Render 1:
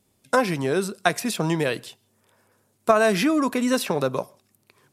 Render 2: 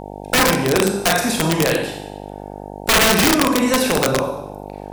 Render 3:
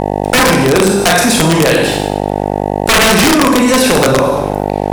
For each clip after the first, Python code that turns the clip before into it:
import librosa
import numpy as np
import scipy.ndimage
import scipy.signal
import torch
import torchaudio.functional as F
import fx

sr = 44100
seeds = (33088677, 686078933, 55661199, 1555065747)

y1 = fx.rev_schroeder(x, sr, rt60_s=0.84, comb_ms=31, drr_db=0.5)
y1 = (np.mod(10.0 ** (12.0 / 20.0) * y1 + 1.0, 2.0) - 1.0) / 10.0 ** (12.0 / 20.0)
y1 = fx.dmg_buzz(y1, sr, base_hz=50.0, harmonics=18, level_db=-37.0, tilt_db=0, odd_only=False)
y1 = y1 * 10.0 ** (4.0 / 20.0)
y2 = scipy.signal.sosfilt(scipy.signal.cheby1(2, 1.0, 11000.0, 'lowpass', fs=sr, output='sos'), y1)
y2 = fx.leveller(y2, sr, passes=2)
y2 = fx.env_flatten(y2, sr, amount_pct=50)
y2 = y2 * 10.0 ** (1.5 / 20.0)